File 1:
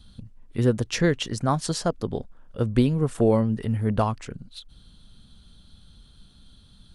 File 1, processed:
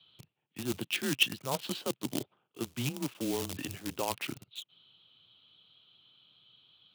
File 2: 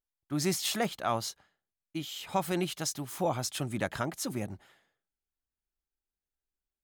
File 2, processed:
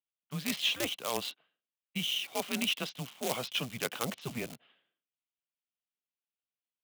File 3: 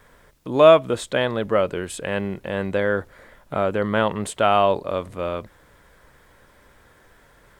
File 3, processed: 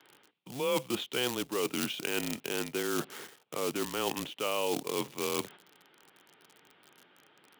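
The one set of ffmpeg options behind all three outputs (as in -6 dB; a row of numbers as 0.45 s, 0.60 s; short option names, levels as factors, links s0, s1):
-filter_complex "[0:a]highpass=f=210:t=q:w=0.5412,highpass=f=210:t=q:w=1.307,lowpass=f=3300:t=q:w=0.5176,lowpass=f=3300:t=q:w=0.7071,lowpass=f=3300:t=q:w=1.932,afreqshift=-130,asplit=2[s0][s1];[s1]acrusher=bits=5:dc=4:mix=0:aa=0.000001,volume=0.531[s2];[s0][s2]amix=inputs=2:normalize=0,agate=range=0.398:threshold=0.00631:ratio=16:detection=peak,areverse,acompressor=threshold=0.0282:ratio=6,areverse,aexciter=amount=4.6:drive=4.7:freq=2500,highpass=f=130:w=0.5412,highpass=f=130:w=1.3066"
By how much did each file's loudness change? -10.0 LU, -1.0 LU, -12.0 LU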